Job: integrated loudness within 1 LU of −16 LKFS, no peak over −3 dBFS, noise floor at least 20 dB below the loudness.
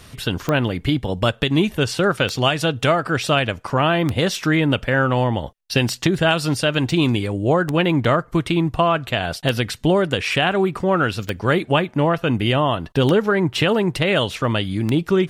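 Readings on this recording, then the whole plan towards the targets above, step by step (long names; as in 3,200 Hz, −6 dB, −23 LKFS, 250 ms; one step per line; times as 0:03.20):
number of clicks 9; integrated loudness −19.5 LKFS; sample peak −3.0 dBFS; target loudness −16.0 LKFS
→ click removal
level +3.5 dB
brickwall limiter −3 dBFS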